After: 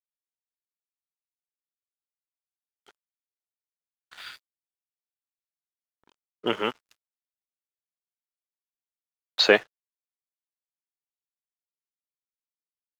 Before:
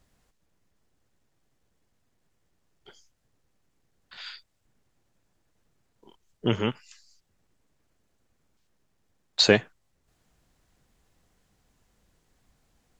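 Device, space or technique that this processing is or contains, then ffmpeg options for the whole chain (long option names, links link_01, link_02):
pocket radio on a weak battery: -af "highpass=400,lowpass=3800,aeval=exprs='sgn(val(0))*max(abs(val(0))-0.00251,0)':channel_layout=same,equalizer=frequency=1300:width_type=o:width=0.27:gain=4.5,volume=3.5dB"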